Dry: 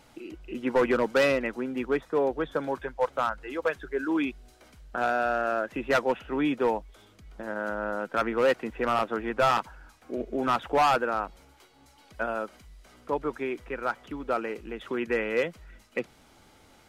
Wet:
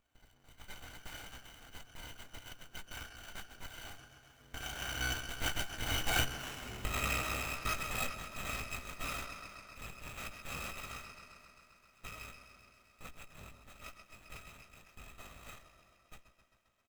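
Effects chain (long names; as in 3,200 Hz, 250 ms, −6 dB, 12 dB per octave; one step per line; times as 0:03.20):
samples in bit-reversed order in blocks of 256 samples
source passing by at 0:06.49, 28 m/s, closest 3.3 metres
in parallel at +1.5 dB: downward compressor, threshold −59 dBFS, peak gain reduction 24.5 dB
on the sum: high-pass filter 110 Hz
parametric band 4,600 Hz +7 dB 0.77 octaves
double-tracking delay 16 ms −5.5 dB
bucket-brigade delay 132 ms, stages 4,096, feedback 77%, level −6 dB
windowed peak hold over 9 samples
level +8.5 dB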